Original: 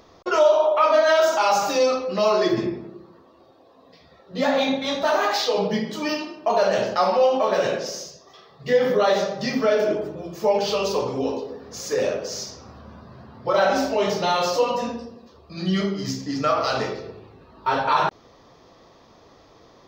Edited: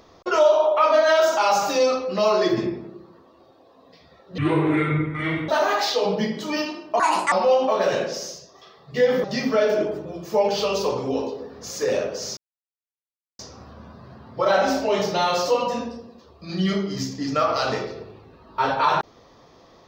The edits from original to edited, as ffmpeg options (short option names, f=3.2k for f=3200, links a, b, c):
-filter_complex "[0:a]asplit=7[a][b][c][d][e][f][g];[a]atrim=end=4.384[h];[b]atrim=start=4.38:end=5.01,asetpts=PTS-STARTPTS,asetrate=25137,aresample=44100,atrim=end_sample=48742,asetpts=PTS-STARTPTS[i];[c]atrim=start=5.006:end=6.524[j];[d]atrim=start=6.52:end=7.04,asetpts=PTS-STARTPTS,asetrate=70560,aresample=44100,atrim=end_sample=14332,asetpts=PTS-STARTPTS[k];[e]atrim=start=7.036:end=8.962[l];[f]atrim=start=9.338:end=12.47,asetpts=PTS-STARTPTS,afade=t=out:st=3.128:d=0.004:c=hsin,apad=pad_dur=1.02[m];[g]atrim=start=12.47,asetpts=PTS-STARTPTS,afade=t=in:d=0.004:c=hsin[n];[h][i]acrossfade=d=0.004:c1=hsin:c2=hsin[o];[o][j]acrossfade=d=0.004:c1=hsin:c2=hsin[p];[p][k]acrossfade=d=0.004:c1=hsin:c2=hsin[q];[q][l]acrossfade=d=0.004:c1=hsin:c2=hsin[r];[m][n]concat=n=2:v=0:a=1[s];[r][s]acrossfade=d=0.004:c1=hsin:c2=hsin"